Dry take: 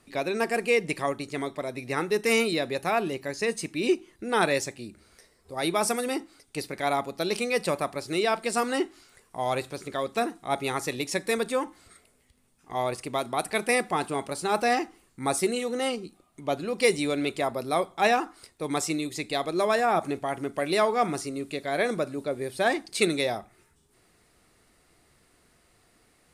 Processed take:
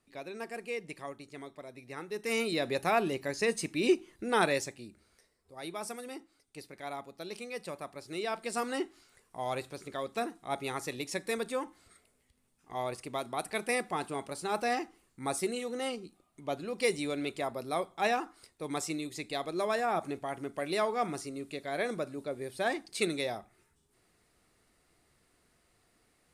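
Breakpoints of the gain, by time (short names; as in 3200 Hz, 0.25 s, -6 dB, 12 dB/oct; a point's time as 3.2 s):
2.06 s -14 dB
2.69 s -2 dB
4.26 s -2 dB
5.53 s -14 dB
7.72 s -14 dB
8.62 s -7 dB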